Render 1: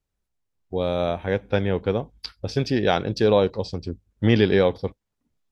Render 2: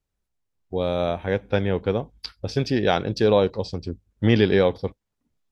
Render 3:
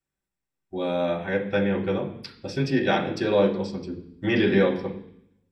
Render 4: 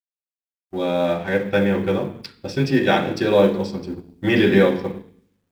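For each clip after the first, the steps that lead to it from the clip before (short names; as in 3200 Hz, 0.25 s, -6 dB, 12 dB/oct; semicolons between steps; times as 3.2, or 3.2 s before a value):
nothing audible
reverb RT60 0.65 s, pre-delay 3 ms, DRR -4 dB; gain -4.5 dB
G.711 law mismatch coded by A; gain +5.5 dB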